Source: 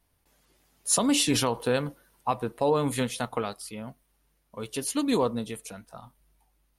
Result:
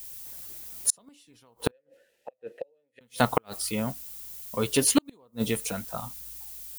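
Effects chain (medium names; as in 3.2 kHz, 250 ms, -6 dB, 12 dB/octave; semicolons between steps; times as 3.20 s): added noise violet -51 dBFS; inverted gate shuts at -17 dBFS, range -42 dB; 1.71–3.01 s: vowel filter e; trim +9 dB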